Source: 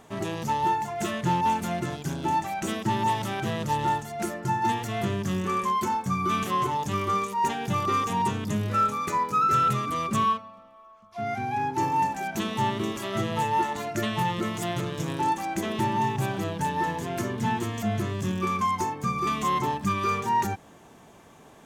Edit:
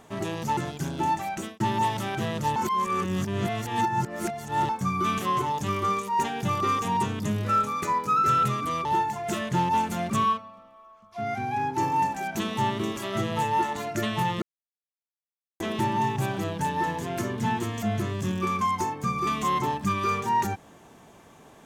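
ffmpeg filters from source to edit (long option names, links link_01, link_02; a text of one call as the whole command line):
ffmpeg -i in.wav -filter_complex "[0:a]asplit=9[link_01][link_02][link_03][link_04][link_05][link_06][link_07][link_08][link_09];[link_01]atrim=end=0.572[link_10];[link_02]atrim=start=1.818:end=2.85,asetpts=PTS-STARTPTS,afade=type=out:start_time=0.732:duration=0.3[link_11];[link_03]atrim=start=2.85:end=3.812,asetpts=PTS-STARTPTS,afade=type=in:duration=0.004:curve=hsin[link_12];[link_04]atrim=start=3.808:end=5.942,asetpts=PTS-STARTPTS,areverse[link_13];[link_05]atrim=start=5.938:end=10.102[link_14];[link_06]atrim=start=0.568:end=1.822[link_15];[link_07]atrim=start=10.098:end=14.42,asetpts=PTS-STARTPTS,afade=type=out:start_time=4.318:duration=0.004:curve=hsin[link_16];[link_08]atrim=start=14.42:end=15.6,asetpts=PTS-STARTPTS,volume=0[link_17];[link_09]atrim=start=15.6,asetpts=PTS-STARTPTS,afade=type=in:duration=0.004:curve=hsin[link_18];[link_11][link_12]concat=n=2:v=0:a=1[link_19];[link_10][link_19]acrossfade=duration=0.004:curve1=hsin:curve2=hsin[link_20];[link_20][link_13]acrossfade=duration=0.004:curve1=hsin:curve2=hsin[link_21];[link_21][link_14]acrossfade=duration=0.004:curve1=hsin:curve2=hsin[link_22];[link_22][link_15]acrossfade=duration=0.004:curve1=hsin:curve2=hsin[link_23];[link_16][link_17][link_18]concat=n=3:v=0:a=1[link_24];[link_23][link_24]acrossfade=duration=0.004:curve1=hsin:curve2=hsin" out.wav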